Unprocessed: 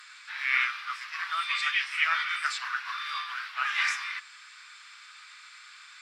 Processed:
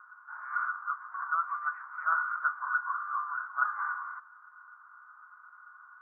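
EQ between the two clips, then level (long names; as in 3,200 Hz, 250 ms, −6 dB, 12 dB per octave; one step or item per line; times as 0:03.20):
high-pass filter 520 Hz 12 dB per octave
Chebyshev low-pass with heavy ripple 1,500 Hz, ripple 6 dB
+6.5 dB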